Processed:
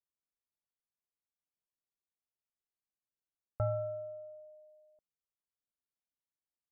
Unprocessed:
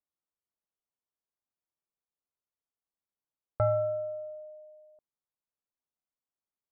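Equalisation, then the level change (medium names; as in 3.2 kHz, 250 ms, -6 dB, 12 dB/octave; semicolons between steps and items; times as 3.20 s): low-pass 1.8 kHz 24 dB/octave; bass shelf 240 Hz +7 dB; -9.0 dB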